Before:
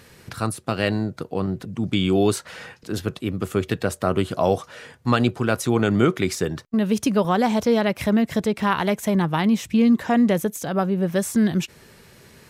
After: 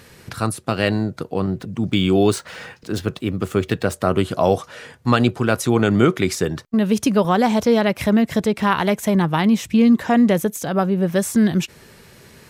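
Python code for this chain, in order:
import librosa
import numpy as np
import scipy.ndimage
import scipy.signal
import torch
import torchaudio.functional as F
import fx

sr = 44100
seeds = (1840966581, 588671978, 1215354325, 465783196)

y = fx.median_filter(x, sr, points=3, at=(1.54, 3.94))
y = y * librosa.db_to_amplitude(3.0)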